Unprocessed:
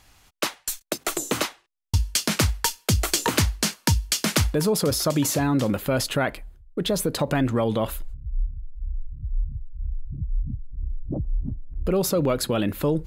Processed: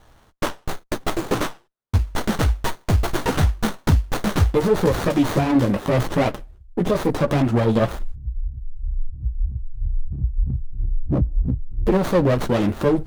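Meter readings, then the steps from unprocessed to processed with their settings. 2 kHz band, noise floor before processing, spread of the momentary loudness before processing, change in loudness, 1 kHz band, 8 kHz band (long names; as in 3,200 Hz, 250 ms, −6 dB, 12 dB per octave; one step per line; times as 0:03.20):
+0.5 dB, −61 dBFS, 13 LU, +2.5 dB, +4.0 dB, −10.5 dB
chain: hard clipping −17 dBFS, distortion −16 dB
multi-voice chorus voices 4, 1 Hz, delay 13 ms, depth 4.5 ms
windowed peak hold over 17 samples
level +8.5 dB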